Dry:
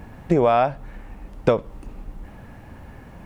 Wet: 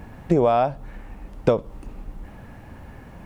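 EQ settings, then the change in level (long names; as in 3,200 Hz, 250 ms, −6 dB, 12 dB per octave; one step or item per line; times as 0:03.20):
dynamic equaliser 1,900 Hz, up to −7 dB, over −38 dBFS, Q 1
0.0 dB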